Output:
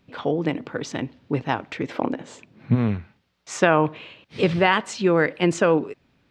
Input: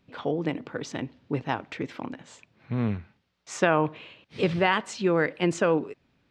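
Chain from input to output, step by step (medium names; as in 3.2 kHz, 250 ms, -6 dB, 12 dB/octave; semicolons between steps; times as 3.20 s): 1.88–2.74 s: peaking EQ 650 Hz -> 180 Hz +11 dB 1.8 oct; trim +4.5 dB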